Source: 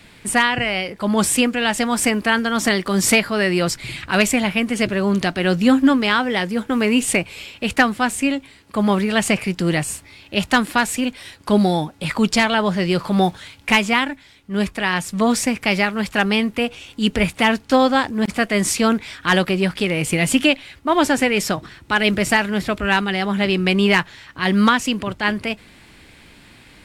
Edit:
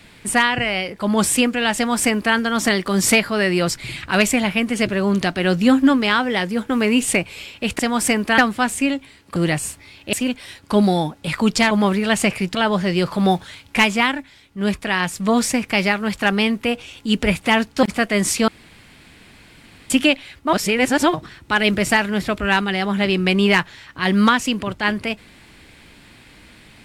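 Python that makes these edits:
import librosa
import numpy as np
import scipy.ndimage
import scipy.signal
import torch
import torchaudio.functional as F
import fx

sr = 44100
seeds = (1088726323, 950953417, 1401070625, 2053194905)

y = fx.edit(x, sr, fx.duplicate(start_s=1.76, length_s=0.59, to_s=7.79),
    fx.move(start_s=8.77, length_s=0.84, to_s=12.48),
    fx.cut(start_s=10.38, length_s=0.52),
    fx.cut(start_s=17.76, length_s=0.47),
    fx.room_tone_fill(start_s=18.88, length_s=1.42),
    fx.reverse_span(start_s=20.93, length_s=0.61), tone=tone)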